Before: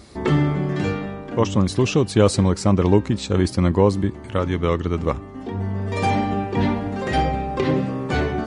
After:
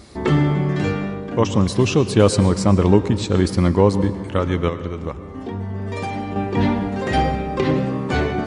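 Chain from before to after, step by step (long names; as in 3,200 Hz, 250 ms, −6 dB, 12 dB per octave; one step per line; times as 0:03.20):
0:04.68–0:06.36: downward compressor, threshold −25 dBFS, peak gain reduction 9.5 dB
convolution reverb RT60 1.5 s, pre-delay 97 ms, DRR 12 dB
level +1.5 dB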